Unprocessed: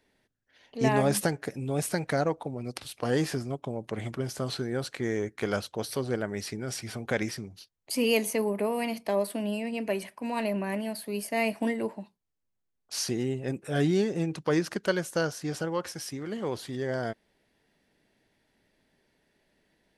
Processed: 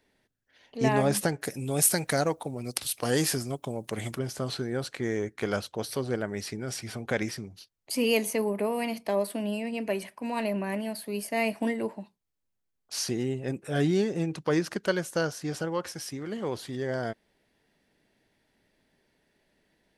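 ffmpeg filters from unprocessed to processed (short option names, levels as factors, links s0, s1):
-filter_complex "[0:a]asettb=1/sr,asplit=3[s0][s1][s2];[s0]atrim=end=1.414[s3];[s1]atrim=start=1.41:end=4.19,asetpts=PTS-STARTPTS,afade=t=in:d=0.004:c=qsin,afade=t=out:st=2.776:d=0.004:c=qsin,aemphasis=mode=production:type=75kf[s4];[s2]atrim=start=4.186[s5];[s3][s4]acrossfade=d=0.004:c1=hsin:c2=qsin[s6];[s6][s5]acrossfade=d=0.004:c1=qsin:c2=hsin"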